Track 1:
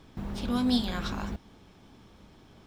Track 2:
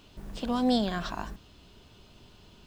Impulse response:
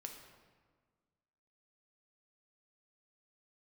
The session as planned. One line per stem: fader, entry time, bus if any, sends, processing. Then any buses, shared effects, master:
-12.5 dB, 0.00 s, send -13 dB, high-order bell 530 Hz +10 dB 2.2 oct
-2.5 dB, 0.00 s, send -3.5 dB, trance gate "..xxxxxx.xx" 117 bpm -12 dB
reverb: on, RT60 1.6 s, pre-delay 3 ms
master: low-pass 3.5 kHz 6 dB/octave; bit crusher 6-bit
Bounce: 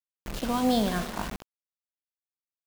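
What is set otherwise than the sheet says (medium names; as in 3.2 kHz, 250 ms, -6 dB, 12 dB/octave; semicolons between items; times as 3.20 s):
stem 1 -12.5 dB -> -22.0 dB; reverb return +7.0 dB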